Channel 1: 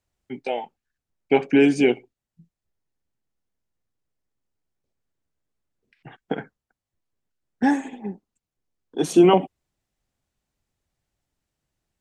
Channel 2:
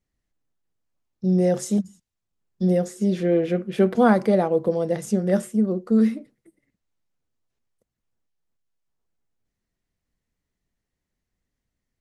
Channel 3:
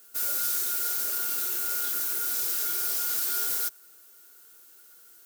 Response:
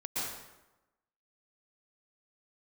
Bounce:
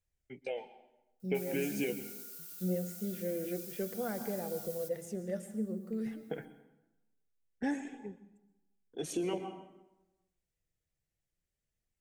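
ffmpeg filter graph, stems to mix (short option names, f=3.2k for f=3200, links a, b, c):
-filter_complex "[0:a]volume=-3.5dB,asplit=2[a][b];[b]volume=-19dB[c];[1:a]volume=-8dB,asplit=2[d][e];[e]volume=-15dB[f];[2:a]adelay=1200,volume=-15.5dB,asplit=2[g][h];[h]volume=-14.5dB[i];[a][d]amix=inputs=2:normalize=0,equalizer=f=250:t=o:w=1:g=-7,equalizer=f=500:t=o:w=1:g=8,equalizer=f=1k:t=o:w=1:g=-5,equalizer=f=2k:t=o:w=1:g=4,equalizer=f=4k:t=o:w=1:g=-5,acompressor=threshold=-22dB:ratio=6,volume=0dB[j];[3:a]atrim=start_sample=2205[k];[c][f][i]amix=inputs=3:normalize=0[l];[l][k]afir=irnorm=-1:irlink=0[m];[g][j][m]amix=inputs=3:normalize=0,equalizer=f=810:w=0.46:g=-9,flanger=delay=1.2:depth=5.1:regen=67:speed=0.23:shape=sinusoidal"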